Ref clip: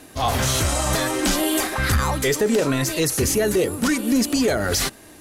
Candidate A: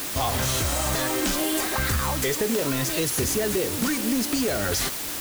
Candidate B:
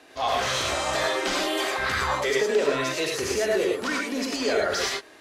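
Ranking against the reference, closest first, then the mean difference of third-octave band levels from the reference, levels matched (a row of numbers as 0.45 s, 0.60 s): A, B; 5.0 dB, 6.5 dB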